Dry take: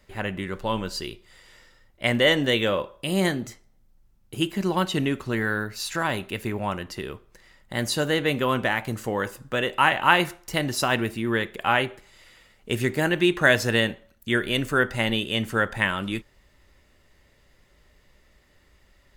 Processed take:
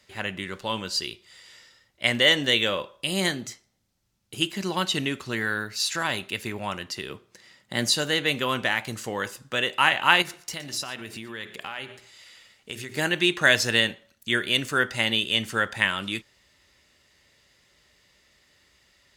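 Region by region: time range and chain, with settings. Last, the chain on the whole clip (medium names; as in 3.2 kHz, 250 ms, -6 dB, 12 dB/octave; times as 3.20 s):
7.10–7.92 s: high-pass 130 Hz + bass shelf 460 Hz +7.5 dB
10.22–12.97 s: hum notches 60/120/180/240/300/360/420/480 Hz + compression 5:1, threshold -31 dBFS + delay 118 ms -16.5 dB
whole clip: high-pass 79 Hz; peaking EQ 5 kHz +11.5 dB 2.7 oct; trim -5 dB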